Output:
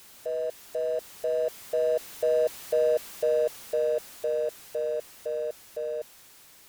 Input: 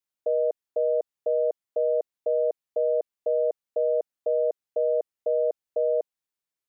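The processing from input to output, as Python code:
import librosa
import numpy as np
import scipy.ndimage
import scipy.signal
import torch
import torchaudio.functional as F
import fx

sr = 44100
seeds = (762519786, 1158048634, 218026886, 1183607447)

y = x + 0.5 * 10.0 ** (-35.0 / 20.0) * np.sign(x)
y = fx.doppler_pass(y, sr, speed_mps=7, closest_m=8.3, pass_at_s=2.73)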